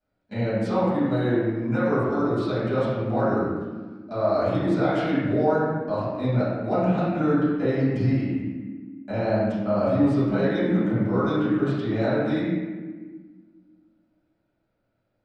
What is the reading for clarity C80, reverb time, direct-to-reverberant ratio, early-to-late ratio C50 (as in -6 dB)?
0.0 dB, 1.4 s, -15.5 dB, -3.0 dB